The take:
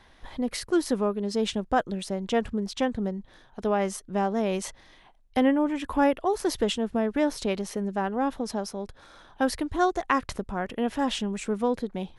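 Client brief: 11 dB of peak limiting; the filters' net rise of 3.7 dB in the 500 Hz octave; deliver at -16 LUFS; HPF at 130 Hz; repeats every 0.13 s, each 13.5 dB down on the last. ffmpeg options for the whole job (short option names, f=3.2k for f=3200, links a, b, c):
-af "highpass=130,equalizer=f=500:t=o:g=4.5,alimiter=limit=-17.5dB:level=0:latency=1,aecho=1:1:130|260:0.211|0.0444,volume=12.5dB"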